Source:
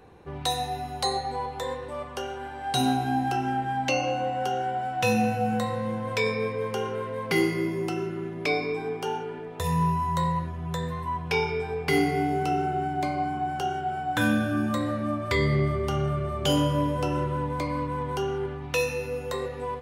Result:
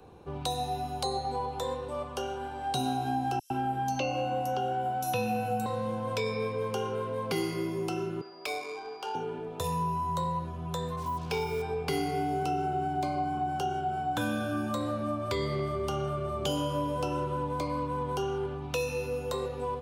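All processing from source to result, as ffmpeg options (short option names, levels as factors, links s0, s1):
-filter_complex "[0:a]asettb=1/sr,asplit=3[s0][s1][s2];[s0]atrim=end=3.394[s3];[s1]atrim=start=3.39:end=5.66,asetpts=PTS-STARTPTS,afade=t=in:d=0.004:c=qsin,afade=t=out:st=2.266:d=0.004:c=qsin,equalizer=f=12000:t=o:w=0.28:g=9.5,acrossover=split=5400[s4][s5];[s4]adelay=110[s6];[s6][s5]amix=inputs=2:normalize=0,atrim=end_sample=100107[s7];[s2]atrim=start=5.656[s8];[s3][s7]acrossfade=d=0.004:c1=hsin:c2=qsin[s9];[s9][s8]acrossfade=d=0.004:c1=qsin:c2=hsin,asettb=1/sr,asplit=3[s10][s11][s12];[s10]atrim=end=8.214[s13];[s11]atrim=start=8.21:end=9.15,asetpts=PTS-STARTPTS,afade=t=in:d=0.004:c=qsin,afade=t=out:st=0.936:d=0.004:c=qsin,highpass=780,adynamicsmooth=sensitivity=7.5:basefreq=1500,aeval=exprs='val(0)+0.002*sin(2*PI*4800*n/s)':c=same[s14];[s12]atrim=start=9.146[s15];[s13][s14]acrossfade=d=0.004:c1=hsin:c2=qsin[s16];[s16][s15]acrossfade=d=0.004:c1=qsin:c2=hsin,asettb=1/sr,asplit=3[s17][s18][s19];[s17]atrim=end=10.964[s20];[s18]atrim=start=10.96:end=11.62,asetpts=PTS-STARTPTS,afade=t=in:d=0.004:c=qsin,afade=t=out:st=0.656:d=0.004:c=qsin,asoftclip=type=hard:threshold=0.112,acrusher=bits=6:mix=0:aa=0.5,adynamicequalizer=threshold=0.00891:dfrequency=2600:dqfactor=0.7:tfrequency=2600:tqfactor=0.7:attack=5:release=100:ratio=0.375:range=2:mode=cutabove:tftype=highshelf[s21];[s19]atrim=start=11.616[s22];[s20][s21]acrossfade=d=0.004:c1=hsin:c2=qsin[s23];[s23][s22]acrossfade=d=0.004:c1=qsin:c2=hsin,equalizer=f=1900:t=o:w=0.43:g=-12.5,acrossover=split=150|330|700[s24][s25][s26][s27];[s24]acompressor=threshold=0.01:ratio=4[s28];[s25]acompressor=threshold=0.00891:ratio=4[s29];[s26]acompressor=threshold=0.02:ratio=4[s30];[s27]acompressor=threshold=0.02:ratio=4[s31];[s28][s29][s30][s31]amix=inputs=4:normalize=0"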